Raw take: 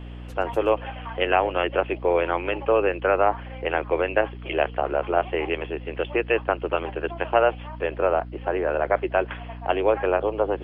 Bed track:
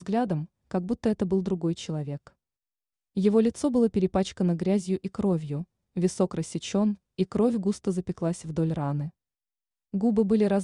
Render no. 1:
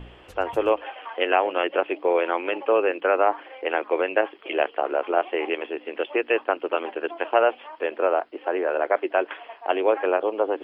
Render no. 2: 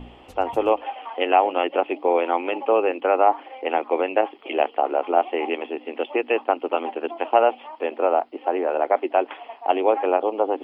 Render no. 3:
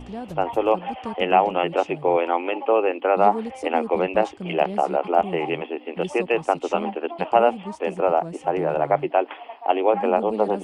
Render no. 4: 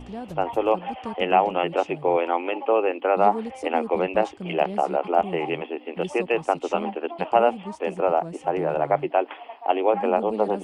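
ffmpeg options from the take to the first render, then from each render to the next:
ffmpeg -i in.wav -af "bandreject=frequency=60:width_type=h:width=4,bandreject=frequency=120:width_type=h:width=4,bandreject=frequency=180:width_type=h:width=4,bandreject=frequency=240:width_type=h:width=4,bandreject=frequency=300:width_type=h:width=4" out.wav
ffmpeg -i in.wav -af "equalizer=frequency=250:width_type=o:width=0.33:gain=10,equalizer=frequency=800:width_type=o:width=0.33:gain=8,equalizer=frequency=1600:width_type=o:width=0.33:gain=-9" out.wav
ffmpeg -i in.wav -i bed.wav -filter_complex "[1:a]volume=-8dB[link_01];[0:a][link_01]amix=inputs=2:normalize=0" out.wav
ffmpeg -i in.wav -af "volume=-1.5dB" out.wav

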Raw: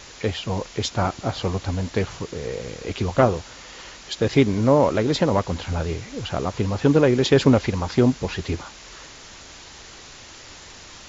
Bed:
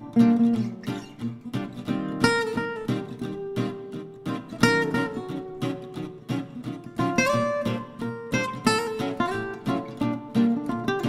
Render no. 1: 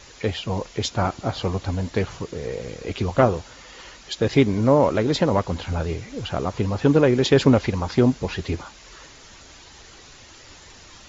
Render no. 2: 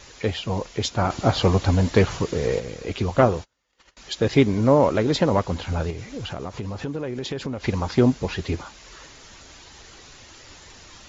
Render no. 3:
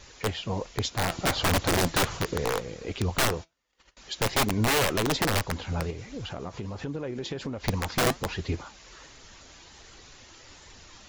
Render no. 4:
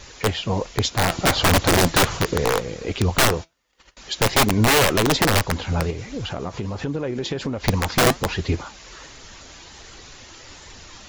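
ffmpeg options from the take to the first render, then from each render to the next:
ffmpeg -i in.wav -af "afftdn=noise_reduction=6:noise_floor=-43" out.wav
ffmpeg -i in.wav -filter_complex "[0:a]asettb=1/sr,asplit=3[link_01][link_02][link_03];[link_01]atrim=end=1.104[link_04];[link_02]atrim=start=1.1:end=2.6,asetpts=PTS-STARTPTS,afade=type=in:duration=0.004:curve=qsin,afade=type=out:start_time=1.496:duration=0.004:curve=qsin,acontrast=68[link_05];[link_03]atrim=start=2.596[link_06];[link_04][link_05]acrossfade=duration=0.004:curve1=hsin:curve2=qsin[link_07];[link_07][link_06]acrossfade=duration=0.004:curve1=qsin:curve2=hsin,asettb=1/sr,asplit=3[link_08][link_09][link_10];[link_08]atrim=end=3.324[link_11];[link_09]atrim=start=3.32:end=3.97,asetpts=PTS-STARTPTS,afade=type=in:duration=0.004:curve=qsin,afade=type=out:start_time=0.646:duration=0.004:curve=qsin,agate=range=-32dB:threshold=-40dB:ratio=16:release=100:detection=peak[link_12];[link_10]atrim=start=3.966[link_13];[link_11][link_12]acrossfade=duration=0.004:curve1=hsin:curve2=qsin[link_14];[link_14][link_13]acrossfade=duration=0.004:curve1=qsin:curve2=hsin,asettb=1/sr,asplit=3[link_15][link_16][link_17];[link_15]atrim=end=5.904[link_18];[link_16]atrim=start=5.9:end=7.64,asetpts=PTS-STARTPTS,afade=type=in:duration=0.004:curve=qsin,afade=type=out:start_time=1.736:duration=0.004:curve=qsin,acompressor=threshold=-27dB:ratio=5:attack=3.2:release=140:knee=1:detection=peak[link_19];[link_17]atrim=start=7.636[link_20];[link_18][link_19]acrossfade=duration=0.004:curve1=hsin:curve2=qsin[link_21];[link_21][link_20]acrossfade=duration=0.004:curve1=qsin:curve2=hsin" out.wav
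ffmpeg -i in.wav -af "aeval=exprs='(mod(4.73*val(0)+1,2)-1)/4.73':channel_layout=same,flanger=delay=0.2:depth=5.9:regen=82:speed=1.3:shape=sinusoidal" out.wav
ffmpeg -i in.wav -af "volume=7.5dB" out.wav

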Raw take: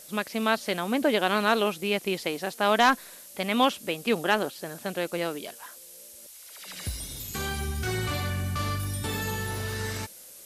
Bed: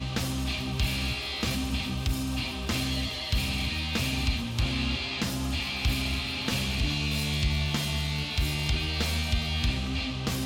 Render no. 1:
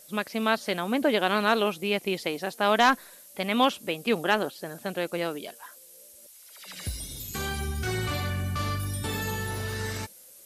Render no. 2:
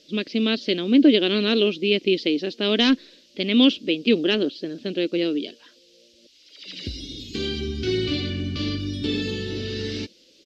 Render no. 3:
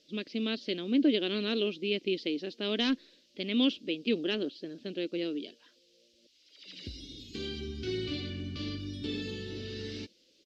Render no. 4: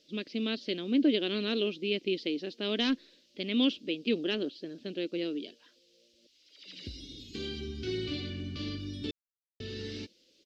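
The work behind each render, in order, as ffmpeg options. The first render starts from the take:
ffmpeg -i in.wav -af "afftdn=noise_reduction=6:noise_floor=-48" out.wav
ffmpeg -i in.wav -af "firequalizer=gain_entry='entry(150,0);entry(290,15);entry(810,-16);entry(2900,9);entry(4800,7);entry(9400,-30)':delay=0.05:min_phase=1" out.wav
ffmpeg -i in.wav -af "volume=-10.5dB" out.wav
ffmpeg -i in.wav -filter_complex "[0:a]asplit=3[link_01][link_02][link_03];[link_01]atrim=end=9.11,asetpts=PTS-STARTPTS,afade=type=out:start_time=9.106:duration=0.004:curve=hsin[link_04];[link_02]atrim=start=9.11:end=9.6,asetpts=PTS-STARTPTS,volume=0[link_05];[link_03]atrim=start=9.6,asetpts=PTS-STARTPTS,afade=type=in:duration=0.004:curve=hsin[link_06];[link_04][link_05][link_06]concat=n=3:v=0:a=1" out.wav

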